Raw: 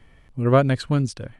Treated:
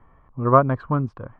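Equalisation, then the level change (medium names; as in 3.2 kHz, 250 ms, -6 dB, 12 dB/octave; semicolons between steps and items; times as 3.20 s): resonant low-pass 1.1 kHz, resonance Q 4.9; -2.5 dB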